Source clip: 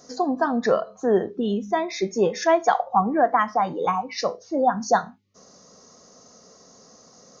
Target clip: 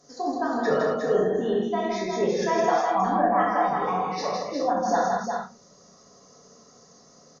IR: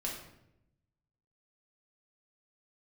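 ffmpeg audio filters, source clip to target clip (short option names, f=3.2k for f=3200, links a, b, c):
-filter_complex "[0:a]asplit=3[a][b][c];[a]afade=t=out:st=0.56:d=0.02[d];[b]aecho=1:1:6.5:0.79,afade=t=in:st=0.56:d=0.02,afade=t=out:st=1.28:d=0.02[e];[c]afade=t=in:st=1.28:d=0.02[f];[d][e][f]amix=inputs=3:normalize=0,aecho=1:1:160|357|388:0.668|0.531|0.224[g];[1:a]atrim=start_sample=2205,atrim=end_sample=3528,asetrate=28665,aresample=44100[h];[g][h]afir=irnorm=-1:irlink=0,volume=-8.5dB"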